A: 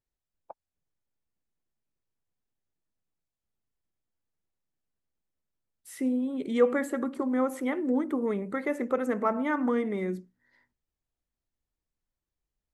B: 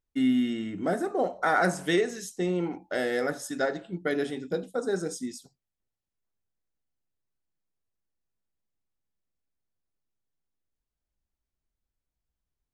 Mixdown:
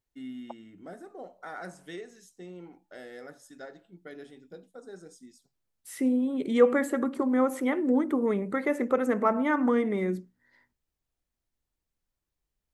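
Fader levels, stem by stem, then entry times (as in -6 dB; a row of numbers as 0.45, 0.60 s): +2.5, -16.5 dB; 0.00, 0.00 s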